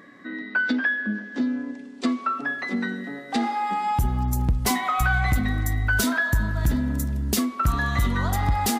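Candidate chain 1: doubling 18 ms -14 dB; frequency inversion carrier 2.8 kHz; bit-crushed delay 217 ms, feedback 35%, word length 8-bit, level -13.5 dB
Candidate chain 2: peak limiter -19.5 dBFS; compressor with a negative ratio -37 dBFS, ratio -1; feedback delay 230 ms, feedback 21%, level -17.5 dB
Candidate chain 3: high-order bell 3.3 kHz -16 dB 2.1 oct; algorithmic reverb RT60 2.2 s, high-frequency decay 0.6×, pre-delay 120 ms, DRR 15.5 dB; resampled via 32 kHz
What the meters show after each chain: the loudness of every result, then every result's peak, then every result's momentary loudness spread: -19.5 LUFS, -36.0 LUFS, -26.0 LUFS; -7.5 dBFS, -19.0 dBFS, -11.5 dBFS; 10 LU, 9 LU, 7 LU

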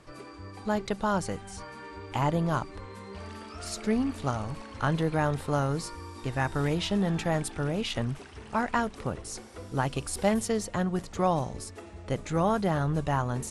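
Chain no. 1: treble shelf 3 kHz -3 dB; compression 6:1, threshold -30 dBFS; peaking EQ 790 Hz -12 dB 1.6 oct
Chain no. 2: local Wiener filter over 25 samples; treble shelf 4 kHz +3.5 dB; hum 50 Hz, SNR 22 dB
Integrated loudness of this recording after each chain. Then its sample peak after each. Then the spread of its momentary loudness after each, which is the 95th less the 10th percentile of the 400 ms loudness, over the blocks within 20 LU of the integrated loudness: -39.0 LUFS, -30.0 LUFS; -22.5 dBFS, -10.5 dBFS; 8 LU, 17 LU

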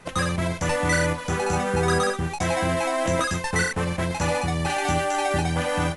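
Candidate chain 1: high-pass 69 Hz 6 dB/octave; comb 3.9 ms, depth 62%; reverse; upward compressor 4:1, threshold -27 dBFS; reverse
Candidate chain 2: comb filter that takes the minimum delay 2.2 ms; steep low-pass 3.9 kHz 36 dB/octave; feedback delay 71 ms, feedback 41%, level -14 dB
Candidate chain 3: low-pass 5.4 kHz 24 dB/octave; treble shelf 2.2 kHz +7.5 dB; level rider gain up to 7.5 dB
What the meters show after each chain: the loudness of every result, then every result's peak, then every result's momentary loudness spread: -23.0 LUFS, -26.0 LUFS, -16.5 LUFS; -9.5 dBFS, -11.5 dBFS, -3.0 dBFS; 4 LU, 4 LU, 4 LU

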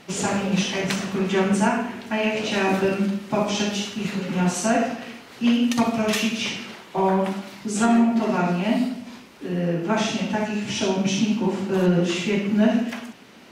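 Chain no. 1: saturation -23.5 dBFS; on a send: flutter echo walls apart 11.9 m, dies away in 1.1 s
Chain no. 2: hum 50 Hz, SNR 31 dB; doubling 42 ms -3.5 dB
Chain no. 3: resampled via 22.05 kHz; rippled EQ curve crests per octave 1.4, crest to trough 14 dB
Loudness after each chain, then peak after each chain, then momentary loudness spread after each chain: -25.5 LUFS, -21.0 LUFS, -19.0 LUFS; -15.0 dBFS, -6.0 dBFS, -3.5 dBFS; 6 LU, 8 LU, 11 LU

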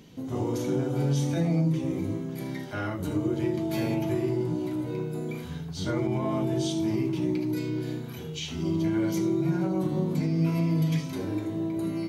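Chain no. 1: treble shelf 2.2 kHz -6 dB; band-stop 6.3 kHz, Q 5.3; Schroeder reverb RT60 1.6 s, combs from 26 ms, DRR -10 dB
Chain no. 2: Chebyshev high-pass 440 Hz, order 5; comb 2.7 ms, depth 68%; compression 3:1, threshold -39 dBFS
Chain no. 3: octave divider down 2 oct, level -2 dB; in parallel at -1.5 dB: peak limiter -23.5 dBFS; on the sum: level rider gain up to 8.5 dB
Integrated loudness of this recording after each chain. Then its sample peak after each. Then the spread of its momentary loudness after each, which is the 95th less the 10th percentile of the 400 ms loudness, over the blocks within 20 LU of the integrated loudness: -19.5 LUFS, -41.5 LUFS, -16.5 LUFS; -5.5 dBFS, -28.5 dBFS, -4.0 dBFS; 10 LU, 4 LU, 6 LU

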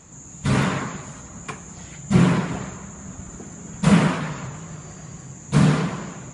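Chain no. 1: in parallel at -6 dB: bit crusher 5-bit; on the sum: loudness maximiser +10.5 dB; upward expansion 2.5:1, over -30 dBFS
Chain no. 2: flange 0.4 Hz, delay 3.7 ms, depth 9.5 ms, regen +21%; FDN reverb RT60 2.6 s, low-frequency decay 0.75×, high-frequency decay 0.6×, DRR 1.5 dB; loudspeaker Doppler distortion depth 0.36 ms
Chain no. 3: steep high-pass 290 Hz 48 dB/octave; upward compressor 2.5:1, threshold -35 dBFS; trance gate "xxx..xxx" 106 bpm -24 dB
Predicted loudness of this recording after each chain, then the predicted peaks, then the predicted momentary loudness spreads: -15.5 LUFS, -23.5 LUFS, -32.5 LUFS; -1.5 dBFS, -5.5 dBFS, -12.0 dBFS; 16 LU, 19 LU, 15 LU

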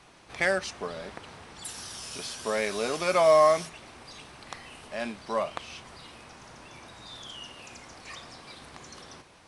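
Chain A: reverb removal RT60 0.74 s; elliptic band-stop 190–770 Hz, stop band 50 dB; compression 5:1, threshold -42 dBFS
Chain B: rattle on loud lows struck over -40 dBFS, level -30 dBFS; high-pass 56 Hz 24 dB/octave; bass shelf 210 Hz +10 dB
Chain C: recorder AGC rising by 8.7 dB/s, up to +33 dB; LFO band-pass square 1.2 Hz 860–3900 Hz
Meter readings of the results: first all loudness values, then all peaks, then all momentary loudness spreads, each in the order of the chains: -46.0 LUFS, -26.5 LUFS, -36.5 LUFS; -25.5 dBFS, -9.0 dBFS, -15.5 dBFS; 8 LU, 23 LU, 15 LU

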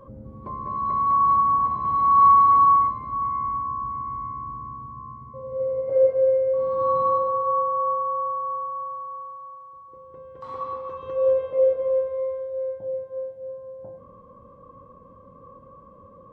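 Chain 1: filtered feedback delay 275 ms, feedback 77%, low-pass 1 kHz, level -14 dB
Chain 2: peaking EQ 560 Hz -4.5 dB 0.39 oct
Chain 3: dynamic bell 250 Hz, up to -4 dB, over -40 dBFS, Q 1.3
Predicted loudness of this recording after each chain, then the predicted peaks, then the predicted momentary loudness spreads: -22.0 LUFS, -22.5 LUFS, -22.0 LUFS; -8.5 dBFS, -8.0 dBFS, -8.0 dBFS; 20 LU, 22 LU, 21 LU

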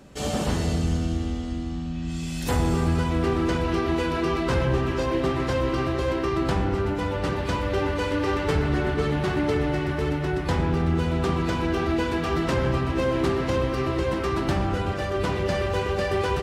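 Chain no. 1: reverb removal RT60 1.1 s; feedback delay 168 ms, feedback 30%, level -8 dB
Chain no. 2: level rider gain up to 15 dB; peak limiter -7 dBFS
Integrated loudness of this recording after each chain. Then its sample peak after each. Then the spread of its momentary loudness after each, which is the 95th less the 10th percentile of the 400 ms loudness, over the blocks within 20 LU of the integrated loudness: -27.0 LUFS, -16.0 LUFS; -12.5 dBFS, -7.0 dBFS; 4 LU, 2 LU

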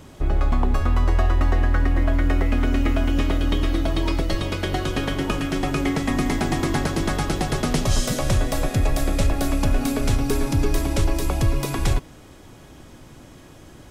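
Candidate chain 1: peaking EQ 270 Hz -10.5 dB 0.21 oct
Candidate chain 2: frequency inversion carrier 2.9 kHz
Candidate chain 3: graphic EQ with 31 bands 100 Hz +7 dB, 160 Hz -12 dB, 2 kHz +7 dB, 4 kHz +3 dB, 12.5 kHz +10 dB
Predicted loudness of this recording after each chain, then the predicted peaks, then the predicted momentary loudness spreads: -24.0 LUFS, -15.5 LUFS, -22.5 LUFS; -8.5 dBFS, -6.0 dBFS, -7.5 dBFS; 4 LU, 7 LU, 3 LU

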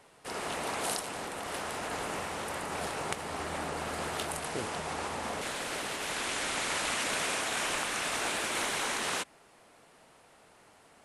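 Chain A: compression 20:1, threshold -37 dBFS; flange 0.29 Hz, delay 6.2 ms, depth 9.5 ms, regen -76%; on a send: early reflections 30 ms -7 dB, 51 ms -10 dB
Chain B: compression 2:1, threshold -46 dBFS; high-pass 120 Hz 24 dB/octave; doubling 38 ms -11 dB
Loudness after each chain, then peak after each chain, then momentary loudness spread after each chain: -43.5 LUFS, -41.0 LUFS; -27.0 dBFS, -22.5 dBFS; 20 LU, 19 LU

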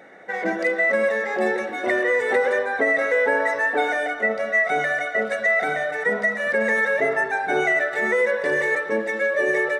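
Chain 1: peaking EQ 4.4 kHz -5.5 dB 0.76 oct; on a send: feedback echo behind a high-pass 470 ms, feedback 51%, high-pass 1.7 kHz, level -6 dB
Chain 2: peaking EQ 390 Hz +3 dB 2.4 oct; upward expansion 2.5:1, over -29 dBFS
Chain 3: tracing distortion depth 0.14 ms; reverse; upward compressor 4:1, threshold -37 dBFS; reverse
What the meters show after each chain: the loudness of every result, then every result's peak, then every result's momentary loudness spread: -21.0 LUFS, -25.5 LUFS, -21.0 LUFS; -8.0 dBFS, -8.0 dBFS, -8.0 dBFS; 4 LU, 8 LU, 4 LU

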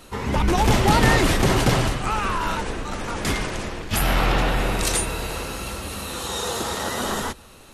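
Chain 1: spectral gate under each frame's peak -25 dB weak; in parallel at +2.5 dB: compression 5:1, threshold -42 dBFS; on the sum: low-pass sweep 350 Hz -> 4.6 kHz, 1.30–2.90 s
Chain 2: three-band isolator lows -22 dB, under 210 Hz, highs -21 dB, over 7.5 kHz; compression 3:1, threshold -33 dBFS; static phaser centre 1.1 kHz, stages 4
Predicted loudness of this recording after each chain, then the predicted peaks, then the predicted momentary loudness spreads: -30.5 LUFS, -37.0 LUFS; -13.0 dBFS, -23.0 dBFS; 21 LU, 5 LU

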